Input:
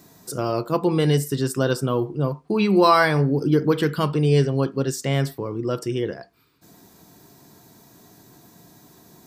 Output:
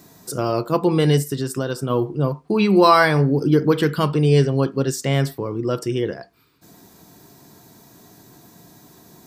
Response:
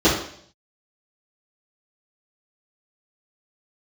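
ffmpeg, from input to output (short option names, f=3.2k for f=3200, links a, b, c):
-filter_complex "[0:a]asplit=3[a][b][c];[a]afade=t=out:st=1.22:d=0.02[d];[b]acompressor=threshold=-23dB:ratio=4,afade=t=in:st=1.22:d=0.02,afade=t=out:st=1.89:d=0.02[e];[c]afade=t=in:st=1.89:d=0.02[f];[d][e][f]amix=inputs=3:normalize=0,volume=2.5dB"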